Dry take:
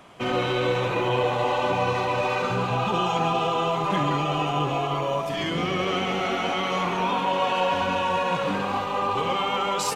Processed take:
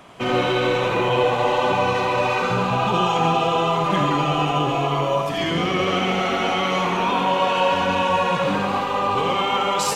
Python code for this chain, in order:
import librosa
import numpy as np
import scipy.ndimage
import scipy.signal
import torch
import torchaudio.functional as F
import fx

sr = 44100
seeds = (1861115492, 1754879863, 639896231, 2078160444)

y = x + 10.0 ** (-6.5 / 20.0) * np.pad(x, (int(85 * sr / 1000.0), 0))[:len(x)]
y = F.gain(torch.from_numpy(y), 3.5).numpy()